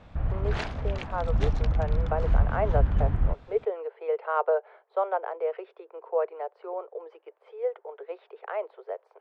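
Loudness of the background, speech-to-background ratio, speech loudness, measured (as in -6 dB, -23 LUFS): -28.5 LUFS, -4.0 dB, -32.5 LUFS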